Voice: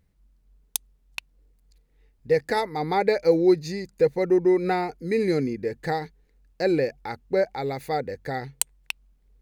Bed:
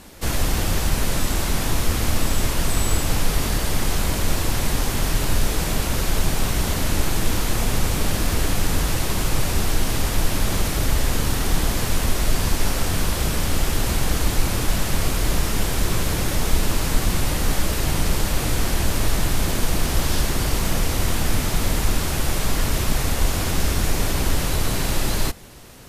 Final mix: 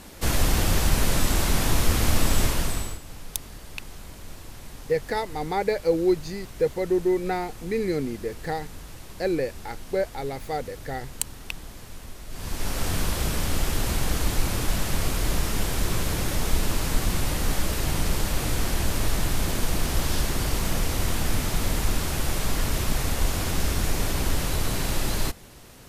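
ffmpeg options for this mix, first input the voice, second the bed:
-filter_complex "[0:a]adelay=2600,volume=0.708[s0];[1:a]volume=5.96,afade=t=out:st=2.41:d=0.58:silence=0.105925,afade=t=in:st=12.29:d=0.59:silence=0.158489[s1];[s0][s1]amix=inputs=2:normalize=0"

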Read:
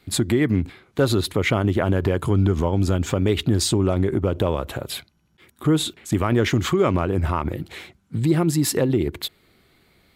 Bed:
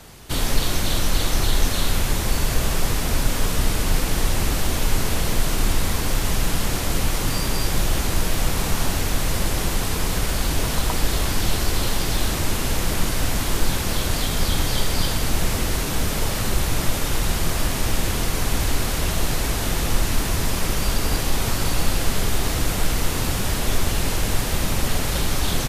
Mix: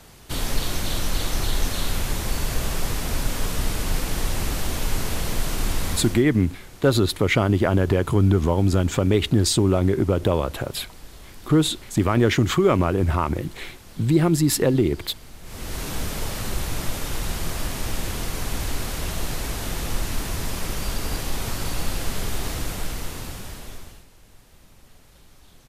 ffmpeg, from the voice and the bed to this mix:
-filter_complex "[0:a]adelay=5850,volume=1.12[s0];[1:a]volume=4.22,afade=t=out:st=5.92:d=0.32:silence=0.125893,afade=t=in:st=15.43:d=0.43:silence=0.149624,afade=t=out:st=22.48:d=1.58:silence=0.0595662[s1];[s0][s1]amix=inputs=2:normalize=0"

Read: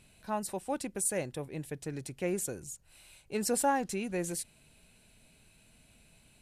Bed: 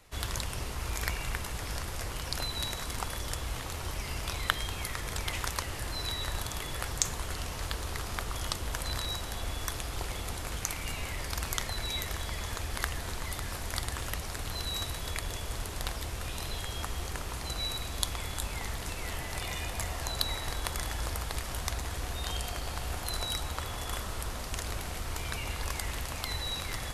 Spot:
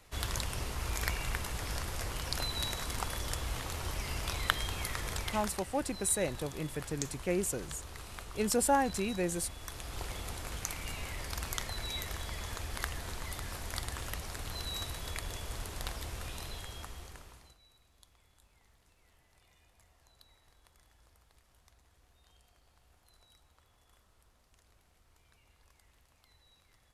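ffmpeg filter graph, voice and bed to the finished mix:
-filter_complex "[0:a]adelay=5050,volume=1.12[s0];[1:a]volume=1.88,afade=t=out:st=5.08:d=0.53:silence=0.334965,afade=t=in:st=9.62:d=0.41:silence=0.473151,afade=t=out:st=16.18:d=1.4:silence=0.0446684[s1];[s0][s1]amix=inputs=2:normalize=0"

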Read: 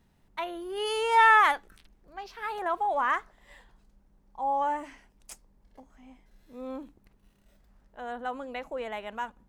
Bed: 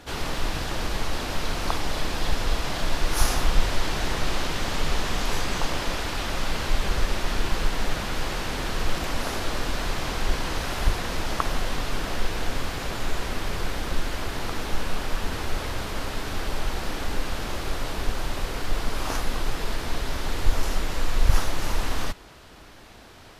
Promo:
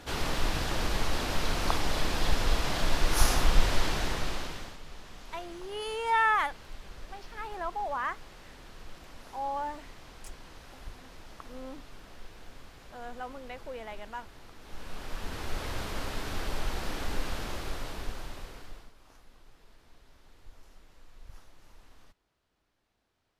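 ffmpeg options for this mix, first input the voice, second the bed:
-filter_complex "[0:a]adelay=4950,volume=0.501[s0];[1:a]volume=5.31,afade=t=out:st=3.79:d=0.99:silence=0.105925,afade=t=in:st=14.6:d=1.17:silence=0.149624,afade=t=out:st=17.3:d=1.63:silence=0.0530884[s1];[s0][s1]amix=inputs=2:normalize=0"

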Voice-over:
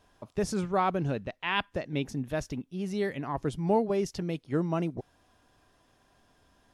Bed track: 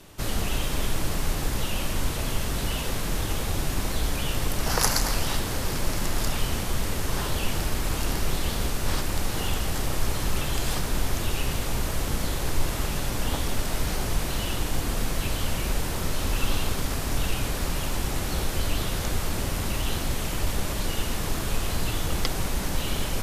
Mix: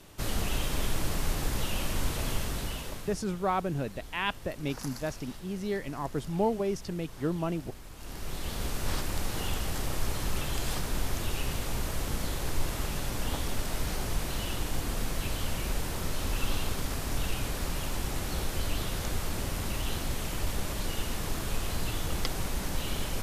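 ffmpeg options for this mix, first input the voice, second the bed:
-filter_complex "[0:a]adelay=2700,volume=0.794[s0];[1:a]volume=3.76,afade=t=out:st=2.32:d=0.9:silence=0.149624,afade=t=in:st=7.96:d=0.82:silence=0.177828[s1];[s0][s1]amix=inputs=2:normalize=0"

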